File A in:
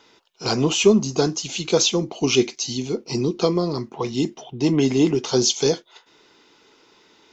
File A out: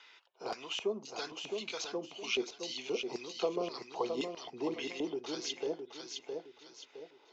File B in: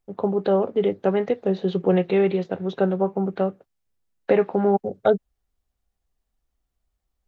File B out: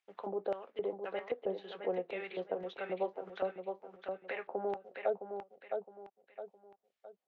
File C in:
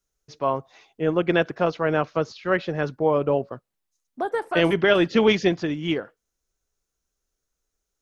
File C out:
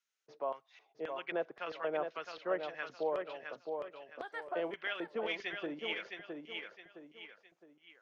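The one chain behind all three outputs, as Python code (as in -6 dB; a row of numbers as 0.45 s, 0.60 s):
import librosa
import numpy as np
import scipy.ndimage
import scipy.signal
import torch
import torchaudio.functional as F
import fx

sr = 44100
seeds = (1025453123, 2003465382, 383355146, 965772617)

p1 = fx.low_shelf(x, sr, hz=300.0, db=-7.0)
p2 = fx.rider(p1, sr, range_db=10, speed_s=0.5)
p3 = scipy.signal.sosfilt(scipy.signal.butter(2, 91.0, 'highpass', fs=sr, output='sos'), p2)
p4 = fx.filter_lfo_bandpass(p3, sr, shape='square', hz=1.9, low_hz=600.0, high_hz=2400.0, q=1.3)
p5 = fx.low_shelf(p4, sr, hz=120.0, db=-4.5)
p6 = p5 + fx.echo_feedback(p5, sr, ms=663, feedback_pct=25, wet_db=-7.0, dry=0)
p7 = fx.band_squash(p6, sr, depth_pct=40)
y = p7 * librosa.db_to_amplitude(-8.0)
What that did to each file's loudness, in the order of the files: -17.0 LU, -17.0 LU, -16.5 LU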